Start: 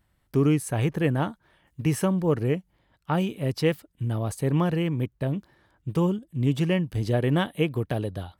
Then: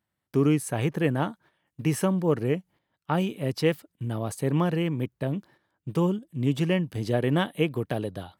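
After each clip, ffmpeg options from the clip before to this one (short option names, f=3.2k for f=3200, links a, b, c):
-af "highpass=130,agate=range=-10dB:threshold=-52dB:ratio=16:detection=peak"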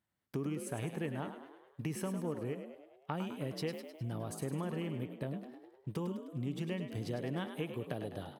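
-filter_complex "[0:a]acompressor=threshold=-31dB:ratio=4,asplit=2[a][b];[b]asplit=6[c][d][e][f][g][h];[c]adelay=103,afreqshift=51,volume=-9dB[i];[d]adelay=206,afreqshift=102,volume=-14.2dB[j];[e]adelay=309,afreqshift=153,volume=-19.4dB[k];[f]adelay=412,afreqshift=204,volume=-24.6dB[l];[g]adelay=515,afreqshift=255,volume=-29.8dB[m];[h]adelay=618,afreqshift=306,volume=-35dB[n];[i][j][k][l][m][n]amix=inputs=6:normalize=0[o];[a][o]amix=inputs=2:normalize=0,volume=-5dB"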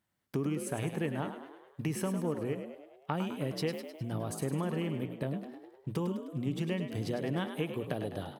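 -af "bandreject=f=60:t=h:w=6,bandreject=f=120:t=h:w=6,volume=4.5dB"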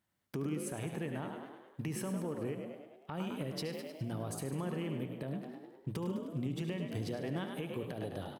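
-filter_complex "[0:a]alimiter=level_in=3dB:limit=-24dB:level=0:latency=1:release=144,volume=-3dB,asplit=2[a][b];[b]aecho=0:1:73|146|219|292|365|438:0.224|0.13|0.0753|0.0437|0.0253|0.0147[c];[a][c]amix=inputs=2:normalize=0,volume=-1dB"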